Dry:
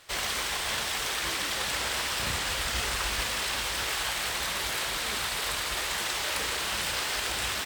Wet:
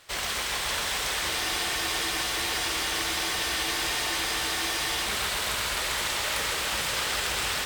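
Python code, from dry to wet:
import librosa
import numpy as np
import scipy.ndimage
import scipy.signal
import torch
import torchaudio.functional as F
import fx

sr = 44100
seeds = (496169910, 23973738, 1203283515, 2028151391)

p1 = x + fx.echo_heads(x, sr, ms=132, heads='first and third', feedback_pct=68, wet_db=-8.0, dry=0)
y = fx.spec_freeze(p1, sr, seeds[0], at_s=1.32, hold_s=3.74)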